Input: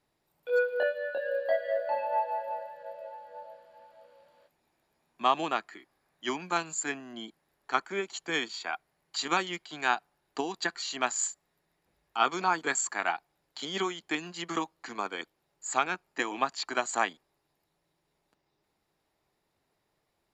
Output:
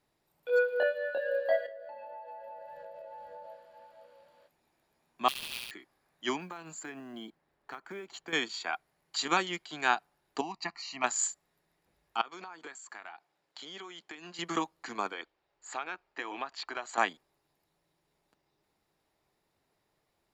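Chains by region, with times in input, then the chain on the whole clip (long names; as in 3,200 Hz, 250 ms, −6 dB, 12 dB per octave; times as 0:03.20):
0:01.66–0:03.47: low-shelf EQ 230 Hz +11 dB + downward compressor 12 to 1, threshold −42 dBFS
0:05.28–0:05.71: Butterworth high-pass 2,400 Hz + sample-rate reduction 7,100 Hz, jitter 20% + flutter between parallel walls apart 11.8 metres, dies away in 1.4 s
0:06.40–0:08.33: low-pass filter 2,300 Hz 6 dB per octave + downward compressor 10 to 1, threshold −38 dBFS + floating-point word with a short mantissa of 4 bits
0:10.41–0:11.04: low-pass filter 4,400 Hz + phaser with its sweep stopped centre 2,300 Hz, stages 8
0:12.21–0:14.39: high-pass filter 370 Hz 6 dB per octave + downward compressor 16 to 1, threshold −40 dBFS + high-frequency loss of the air 53 metres
0:15.12–0:16.98: low-pass filter 4,000 Hz + parametric band 170 Hz −11 dB 1.4 octaves + downward compressor 2.5 to 1, threshold −35 dBFS
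whole clip: no processing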